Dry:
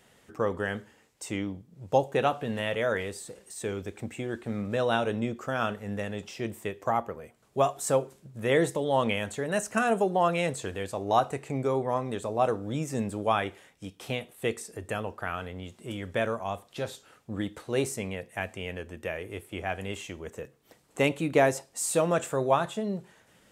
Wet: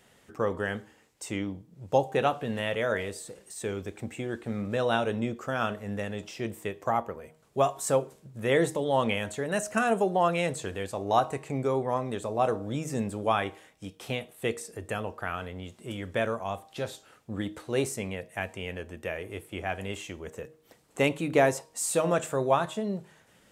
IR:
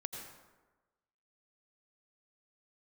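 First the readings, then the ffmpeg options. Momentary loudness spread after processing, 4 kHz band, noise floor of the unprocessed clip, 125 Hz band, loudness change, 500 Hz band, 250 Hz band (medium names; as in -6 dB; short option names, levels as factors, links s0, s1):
14 LU, 0.0 dB, -63 dBFS, 0.0 dB, 0.0 dB, 0.0 dB, 0.0 dB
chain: -af "bandreject=f=156.9:t=h:w=4,bandreject=f=313.8:t=h:w=4,bandreject=f=470.7:t=h:w=4,bandreject=f=627.6:t=h:w=4,bandreject=f=784.5:t=h:w=4,bandreject=f=941.4:t=h:w=4,bandreject=f=1098.3:t=h:w=4"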